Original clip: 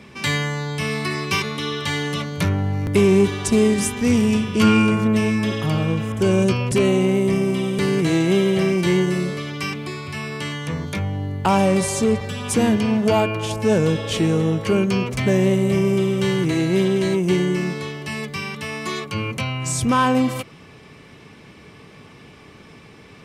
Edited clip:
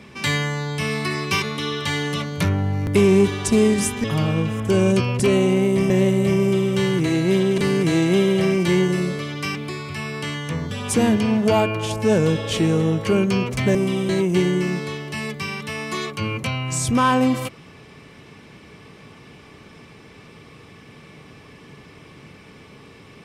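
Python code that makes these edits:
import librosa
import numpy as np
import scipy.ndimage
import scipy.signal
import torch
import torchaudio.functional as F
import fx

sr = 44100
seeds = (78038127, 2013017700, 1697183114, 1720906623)

y = fx.edit(x, sr, fx.cut(start_s=4.04, length_s=1.52),
    fx.swap(start_s=7.42, length_s=0.34, other_s=15.35, other_length_s=1.68),
    fx.cut(start_s=10.89, length_s=1.42), tone=tone)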